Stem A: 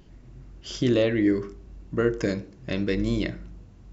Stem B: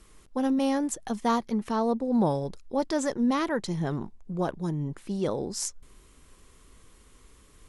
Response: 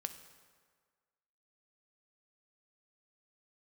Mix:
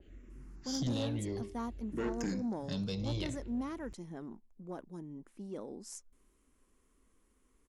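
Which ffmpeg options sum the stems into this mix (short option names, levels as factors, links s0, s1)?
-filter_complex "[0:a]acrossover=split=280|3000[s0][s1][s2];[s1]acompressor=threshold=0.00562:ratio=1.5[s3];[s0][s3][s2]amix=inputs=3:normalize=0,asplit=2[s4][s5];[s5]afreqshift=-0.56[s6];[s4][s6]amix=inputs=2:normalize=1,volume=0.708[s7];[1:a]equalizer=f=125:t=o:w=1:g=-9,equalizer=f=250:t=o:w=1:g=8,equalizer=f=4000:t=o:w=1:g=-7,adelay=300,volume=0.158[s8];[s7][s8]amix=inputs=2:normalize=0,asoftclip=type=tanh:threshold=0.0398,adynamicequalizer=threshold=0.00178:dfrequency=2800:dqfactor=0.7:tfrequency=2800:tqfactor=0.7:attack=5:release=100:ratio=0.375:range=2:mode=boostabove:tftype=highshelf"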